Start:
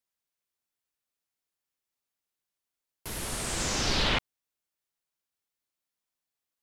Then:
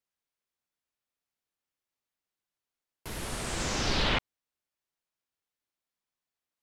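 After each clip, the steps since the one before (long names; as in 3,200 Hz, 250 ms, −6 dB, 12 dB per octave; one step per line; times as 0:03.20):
high-shelf EQ 5,500 Hz −7.5 dB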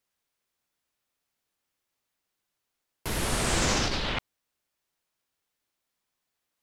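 compressor whose output falls as the input rises −32 dBFS, ratio −1
level +5.5 dB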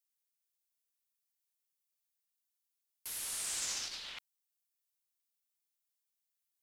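first-order pre-emphasis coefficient 0.97
level −5 dB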